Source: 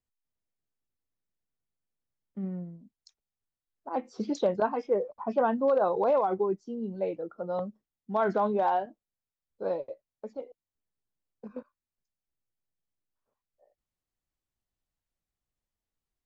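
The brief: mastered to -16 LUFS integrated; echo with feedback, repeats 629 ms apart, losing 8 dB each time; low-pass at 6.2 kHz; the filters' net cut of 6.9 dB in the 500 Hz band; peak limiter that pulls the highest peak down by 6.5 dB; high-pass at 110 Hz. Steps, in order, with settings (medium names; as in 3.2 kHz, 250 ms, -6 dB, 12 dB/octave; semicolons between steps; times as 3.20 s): high-pass 110 Hz; low-pass 6.2 kHz; peaking EQ 500 Hz -8.5 dB; peak limiter -25.5 dBFS; feedback delay 629 ms, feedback 40%, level -8 dB; trim +21 dB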